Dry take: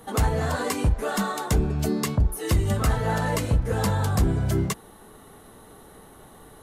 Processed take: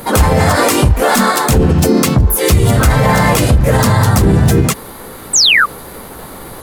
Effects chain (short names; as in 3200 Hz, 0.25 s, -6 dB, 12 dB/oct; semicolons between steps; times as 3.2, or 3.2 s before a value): high shelf 2700 Hz +3.5 dB; painted sound fall, 5.35–5.66, 1100–7200 Hz -25 dBFS; harmoniser +3 st 0 dB; maximiser +15 dB; gain -1 dB